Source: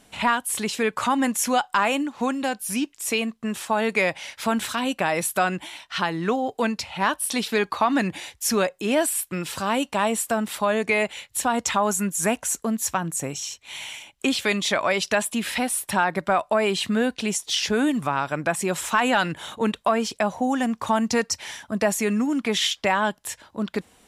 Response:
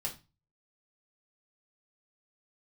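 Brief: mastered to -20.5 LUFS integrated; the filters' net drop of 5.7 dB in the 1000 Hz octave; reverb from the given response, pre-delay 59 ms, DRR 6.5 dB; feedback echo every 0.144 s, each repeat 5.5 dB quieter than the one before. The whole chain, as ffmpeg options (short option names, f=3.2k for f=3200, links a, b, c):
-filter_complex "[0:a]equalizer=f=1k:t=o:g=-7.5,aecho=1:1:144|288|432|576|720|864|1008:0.531|0.281|0.149|0.079|0.0419|0.0222|0.0118,asplit=2[a][b];[1:a]atrim=start_sample=2205,adelay=59[c];[b][c]afir=irnorm=-1:irlink=0,volume=-8dB[d];[a][d]amix=inputs=2:normalize=0,volume=3dB"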